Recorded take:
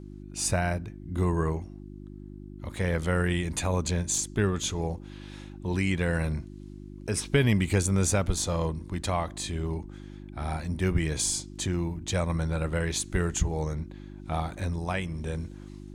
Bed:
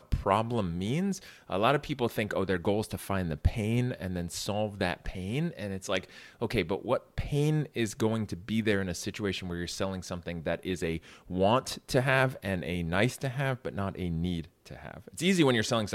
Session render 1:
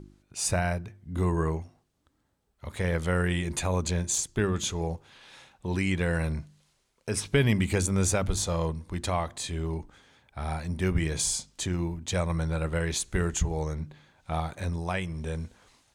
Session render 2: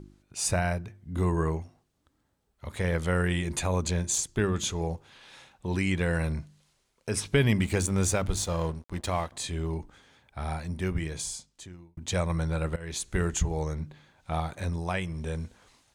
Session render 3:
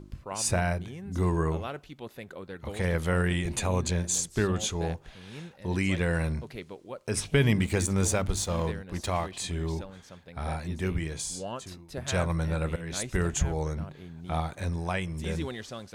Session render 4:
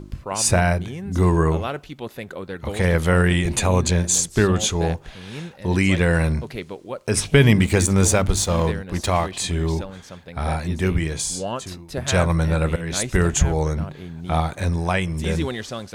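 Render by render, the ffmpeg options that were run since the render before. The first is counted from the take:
-af "bandreject=f=50:t=h:w=4,bandreject=f=100:t=h:w=4,bandreject=f=150:t=h:w=4,bandreject=f=200:t=h:w=4,bandreject=f=250:t=h:w=4,bandreject=f=300:t=h:w=4,bandreject=f=350:t=h:w=4"
-filter_complex "[0:a]asettb=1/sr,asplit=3[a][b][c];[a]atrim=end=7.614[d];[b]atrim=start=7.61:end=9.32,asetpts=PTS-STARTPTS,afade=t=in:d=0.004:c=qsin,afade=t=out:st=1.706:d=0.004:c=qsin,aeval=exprs='sgn(val(0))*max(abs(val(0))-0.00596,0)':c=same[e];[c]atrim=start=9.316[f];[d][e]acrossfade=d=0.004:c1=hsin:c2=qsin[g];[g][f]acrossfade=d=0.004:c1=qsin:c2=hsin,asplit=3[h][i][j];[h]atrim=end=11.97,asetpts=PTS-STARTPTS,afade=t=out:st=10.38:d=1.59[k];[i]atrim=start=11.97:end=12.76,asetpts=PTS-STARTPTS,afade=t=in:d=0.004:c=hsin,afade=t=out:st=0.786:d=0.004:c=hsin:silence=0.0944061[l];[j]atrim=start=12.76,asetpts=PTS-STARTPTS,afade=t=in:d=0.51:c=qsin:silence=0.0944061[m];[k][l][m]concat=n=3:v=0:a=1"
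-filter_complex "[1:a]volume=-12dB[a];[0:a][a]amix=inputs=2:normalize=0"
-af "volume=9dB"

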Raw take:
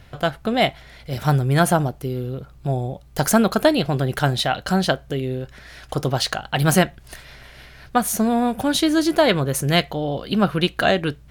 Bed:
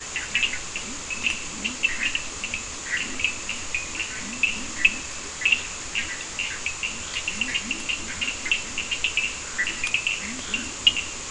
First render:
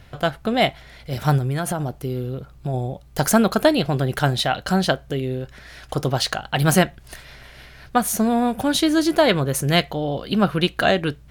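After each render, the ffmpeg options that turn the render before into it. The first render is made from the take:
-filter_complex "[0:a]asettb=1/sr,asplit=3[a][b][c];[a]atrim=end=1.384[d];[b]atrim=start=1.38:end=2.74,asetpts=PTS-STARTPTS,afade=t=in:d=0.004:c=qsin,afade=t=out:st=1.356:d=0.004:c=qsin,acompressor=threshold=-20dB:ratio=6:attack=3.2:release=140:knee=1:detection=peak[e];[c]atrim=start=2.736[f];[d][e]acrossfade=d=0.004:c1=hsin:c2=qsin[g];[g][f]acrossfade=d=0.004:c1=qsin:c2=hsin"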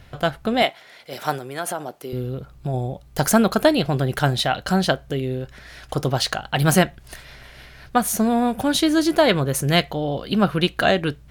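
-filter_complex "[0:a]asettb=1/sr,asplit=3[a][b][c];[a]atrim=end=0.624[d];[b]atrim=start=0.62:end=2.13,asetpts=PTS-STARTPTS,afade=t=in:d=0.004:c=qsin,afade=t=out:st=1.506:d=0.004:c=qsin,highpass=370[e];[c]atrim=start=2.126[f];[d][e]acrossfade=d=0.004:c1=hsin:c2=qsin[g];[g][f]acrossfade=d=0.004:c1=qsin:c2=hsin"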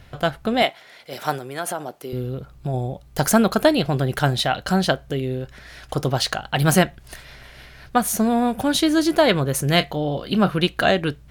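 -filter_complex "[0:a]asettb=1/sr,asplit=3[a][b][c];[a]atrim=end=9.714[d];[b]atrim=start=9.71:end=10.58,asetpts=PTS-STARTPTS,afade=t=in:d=0.004:c=qsin,afade=t=out:st=0.866:d=0.004:c=qsin,asplit=2[e][f];[f]adelay=27,volume=-13.5dB[g];[e][g]amix=inputs=2:normalize=0,atrim=end_sample=38367[h];[c]atrim=start=10.576[i];[d][h]acrossfade=d=0.004:c1=hsin:c2=qsin[j];[j][i]acrossfade=d=0.004:c1=qsin:c2=hsin"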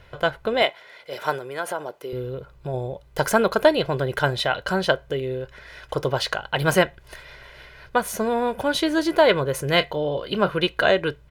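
-af "bass=f=250:g=-7,treble=f=4k:g=-9,aecho=1:1:2:0.48"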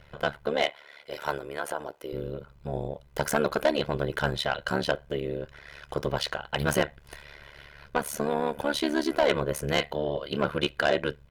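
-af "tremolo=f=72:d=0.974,asoftclip=type=tanh:threshold=-14.5dB"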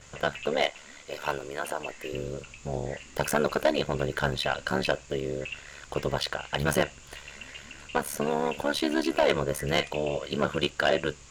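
-filter_complex "[1:a]volume=-18.5dB[a];[0:a][a]amix=inputs=2:normalize=0"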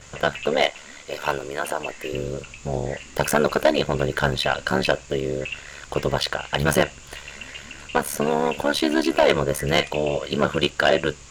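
-af "volume=6dB"

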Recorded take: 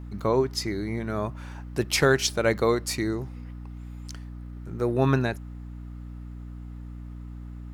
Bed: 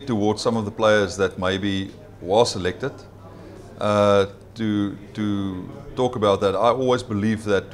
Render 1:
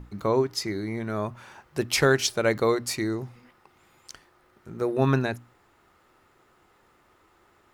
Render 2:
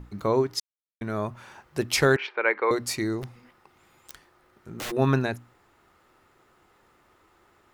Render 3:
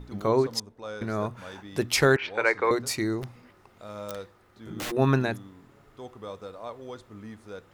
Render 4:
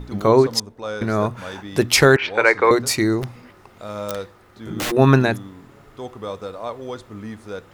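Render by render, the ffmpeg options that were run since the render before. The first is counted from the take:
-af "bandreject=f=60:t=h:w=6,bandreject=f=120:t=h:w=6,bandreject=f=180:t=h:w=6,bandreject=f=240:t=h:w=6,bandreject=f=300:t=h:w=6"
-filter_complex "[0:a]asettb=1/sr,asplit=3[a][b][c];[a]atrim=end=2.164[d];[b]atrim=start=2.16:end=2.71,asetpts=PTS-STARTPTS,afade=t=in:d=0.004:c=qsin,afade=t=out:st=0.546:d=0.004:c=qsin,highpass=f=390:w=0.5412,highpass=f=390:w=1.3066,equalizer=f=630:t=q:w=4:g=-8,equalizer=f=940:t=q:w=4:g=6,equalizer=f=1.6k:t=q:w=4:g=5,equalizer=f=2.3k:t=q:w=4:g=8,lowpass=f=2.6k:w=0.5412,lowpass=f=2.6k:w=1.3066[e];[c]atrim=start=2.706[f];[d][e]acrossfade=d=0.004:c1=hsin:c2=qsin[g];[g][f]acrossfade=d=0.004:c1=qsin:c2=hsin,asplit=3[h][i][j];[h]afade=t=out:st=3.22:d=0.02[k];[i]aeval=exprs='(mod(26.6*val(0)+1,2)-1)/26.6':c=same,afade=t=in:st=3.22:d=0.02,afade=t=out:st=4.9:d=0.02[l];[j]afade=t=in:st=4.9:d=0.02[m];[k][l][m]amix=inputs=3:normalize=0,asplit=3[n][o][p];[n]atrim=end=0.6,asetpts=PTS-STARTPTS,afade=t=out:st=0.596:d=0.004:c=hsin[q];[o]atrim=start=0.6:end=1.01,asetpts=PTS-STARTPTS,volume=0[r];[p]atrim=start=1.01,asetpts=PTS-STARTPTS,afade=t=in:d=0.004:c=hsin[s];[q][r][s]concat=n=3:v=0:a=1"
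-filter_complex "[1:a]volume=-21dB[a];[0:a][a]amix=inputs=2:normalize=0"
-af "volume=9dB,alimiter=limit=-2dB:level=0:latency=1"

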